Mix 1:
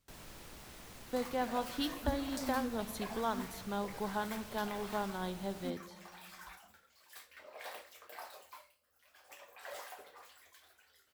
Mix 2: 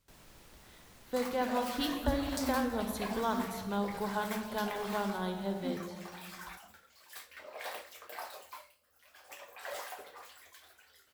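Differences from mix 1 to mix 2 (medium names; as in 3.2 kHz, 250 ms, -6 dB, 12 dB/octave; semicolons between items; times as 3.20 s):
speech: send +11.0 dB; first sound -5.5 dB; second sound +5.0 dB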